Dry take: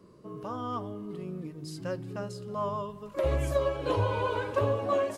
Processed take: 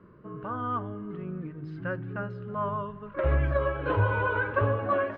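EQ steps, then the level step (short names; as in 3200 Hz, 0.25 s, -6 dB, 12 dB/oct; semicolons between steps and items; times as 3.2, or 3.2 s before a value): LPF 2900 Hz 24 dB/oct; low shelf 230 Hz +9 dB; bell 1500 Hz +14 dB 0.73 oct; -3.0 dB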